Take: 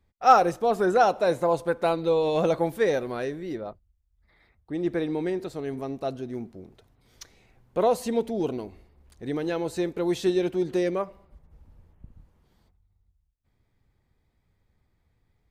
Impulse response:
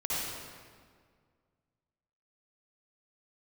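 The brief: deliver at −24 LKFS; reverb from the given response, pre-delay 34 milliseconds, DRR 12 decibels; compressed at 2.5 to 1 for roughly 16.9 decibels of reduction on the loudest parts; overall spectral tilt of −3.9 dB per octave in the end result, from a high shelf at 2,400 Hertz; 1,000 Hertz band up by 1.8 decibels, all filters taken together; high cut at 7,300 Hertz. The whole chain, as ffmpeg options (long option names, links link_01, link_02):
-filter_complex "[0:a]lowpass=7300,equalizer=frequency=1000:width_type=o:gain=3.5,highshelf=frequency=2400:gain=-4.5,acompressor=threshold=-36dB:ratio=2.5,asplit=2[link_01][link_02];[1:a]atrim=start_sample=2205,adelay=34[link_03];[link_02][link_03]afir=irnorm=-1:irlink=0,volume=-19dB[link_04];[link_01][link_04]amix=inputs=2:normalize=0,volume=11.5dB"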